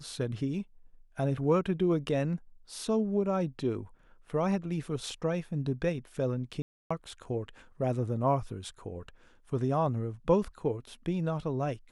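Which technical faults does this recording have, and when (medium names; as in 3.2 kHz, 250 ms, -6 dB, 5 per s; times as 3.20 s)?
6.62–6.91 s: dropout 285 ms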